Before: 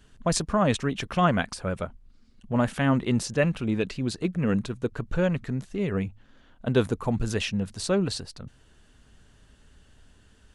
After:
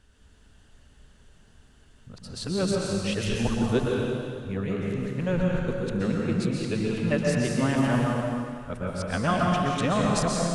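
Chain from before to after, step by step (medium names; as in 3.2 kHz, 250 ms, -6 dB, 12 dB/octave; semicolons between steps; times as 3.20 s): reverse the whole clip; plate-style reverb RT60 2.2 s, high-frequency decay 0.95×, pre-delay 110 ms, DRR -2.5 dB; trim -4 dB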